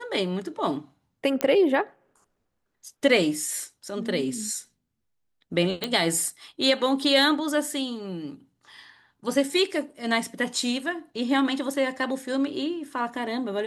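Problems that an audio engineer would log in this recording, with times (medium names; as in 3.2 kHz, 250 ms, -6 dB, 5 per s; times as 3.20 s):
1.41 s: pop -9 dBFS
5.84 s: pop -12 dBFS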